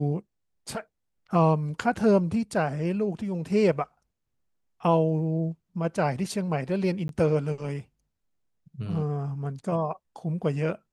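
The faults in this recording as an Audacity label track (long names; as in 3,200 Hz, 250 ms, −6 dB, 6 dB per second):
7.080000	7.090000	drop-out 12 ms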